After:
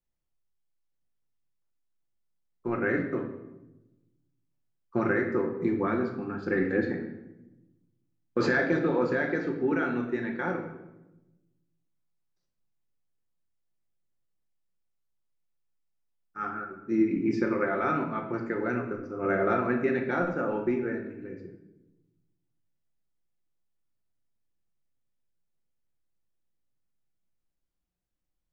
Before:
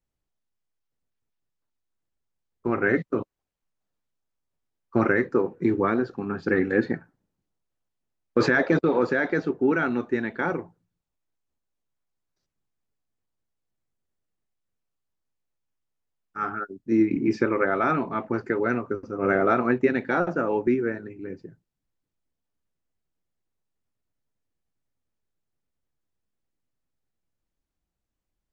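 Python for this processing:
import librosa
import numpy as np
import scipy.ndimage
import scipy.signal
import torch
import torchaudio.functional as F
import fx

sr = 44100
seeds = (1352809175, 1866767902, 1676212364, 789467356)

y = fx.room_shoebox(x, sr, seeds[0], volume_m3=400.0, walls='mixed', distance_m=0.9)
y = y * 10.0 ** (-6.5 / 20.0)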